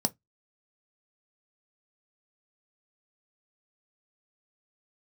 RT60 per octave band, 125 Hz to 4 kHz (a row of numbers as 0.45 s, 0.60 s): 0.25 s, 0.20 s, 0.15 s, 0.15 s, 0.15 s, 0.10 s